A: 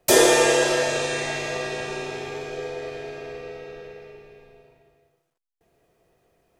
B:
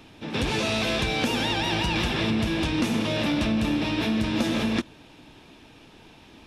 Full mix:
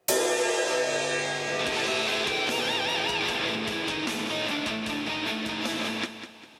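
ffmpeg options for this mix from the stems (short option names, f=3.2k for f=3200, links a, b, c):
-filter_complex "[0:a]flanger=delay=15.5:depth=4.2:speed=0.37,volume=2.5dB[a];[1:a]lowshelf=f=490:g=-10,adelay=1250,volume=1dB,asplit=2[b][c];[c]volume=-10.5dB,aecho=0:1:200|400|600|800|1000:1|0.35|0.122|0.0429|0.015[d];[a][b][d]amix=inputs=3:normalize=0,highpass=f=230:p=1,acompressor=threshold=-22dB:ratio=6"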